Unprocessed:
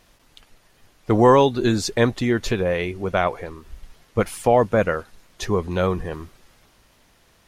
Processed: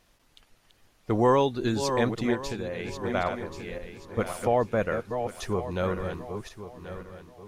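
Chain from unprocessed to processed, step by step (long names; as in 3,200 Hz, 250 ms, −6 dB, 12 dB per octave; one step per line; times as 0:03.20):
feedback delay that plays each chunk backwards 541 ms, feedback 50%, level −7 dB
0:02.34–0:03.04: downward compressor, threshold −22 dBFS, peak gain reduction 6 dB
level −7.5 dB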